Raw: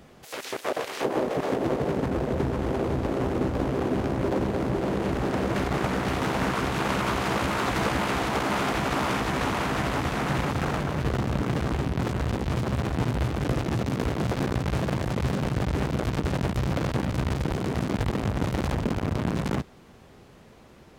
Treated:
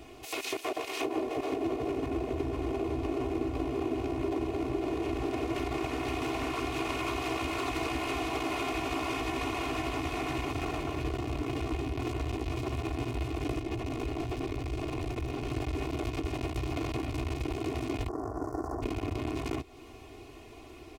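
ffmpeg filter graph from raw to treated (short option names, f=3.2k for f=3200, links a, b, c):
-filter_complex "[0:a]asettb=1/sr,asplit=3[a][b][c];[a]atrim=end=13.594[d];[b]atrim=start=13.59:end=15.49,asetpts=PTS-STARTPTS,afade=t=in:d=0.004:c=qsin,afade=t=out:st=1.896:d=0.004:c=qsin,highshelf=f=5k:g=-6,volume=27.5dB,asoftclip=hard,volume=-27.5dB[e];[c]atrim=start=15.486[f];[d][e]acrossfade=d=0.004:c1=hsin:c2=qsin[g];[g][f]acrossfade=d=0.004:c1=qsin:c2=hsin,asettb=1/sr,asplit=3[h][i][j];[h]atrim=end=18.084[k];[i]atrim=start=18.08:end=18.82,asetpts=PTS-STARTPTS,afade=t=in:d=0.004:c=qsin,afade=t=out:st=0.736:d=0.004:c=qsin,asuperstop=centerf=2900:order=8:qfactor=0.76,bass=f=250:g=-10,treble=f=4k:g=-10[l];[j]atrim=start=18.816[m];[k][l]acrossfade=d=0.004:c1=hsin:c2=qsin[n];[n][m]acrossfade=d=0.004:c1=qsin:c2=hsin,aecho=1:1:2.8:0.89,acompressor=threshold=-33dB:ratio=3,equalizer=f=200:t=o:w=0.33:g=-7,equalizer=f=315:t=o:w=0.33:g=4,equalizer=f=1.6k:t=o:w=0.33:g=-11,equalizer=f=2.5k:t=o:w=0.33:g=7"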